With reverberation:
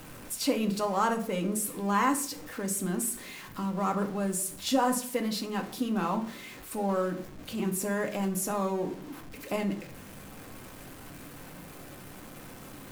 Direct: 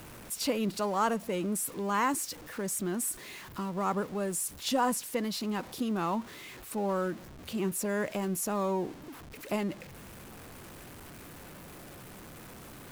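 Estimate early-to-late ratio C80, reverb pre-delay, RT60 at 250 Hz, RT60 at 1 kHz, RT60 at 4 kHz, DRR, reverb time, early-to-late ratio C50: 16.0 dB, 4 ms, 0.75 s, 0.50 s, 0.30 s, 4.0 dB, 0.55 s, 12.5 dB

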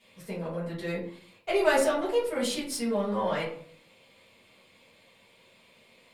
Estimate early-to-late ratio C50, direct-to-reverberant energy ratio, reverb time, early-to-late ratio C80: 5.5 dB, −12.0 dB, 0.55 s, 10.5 dB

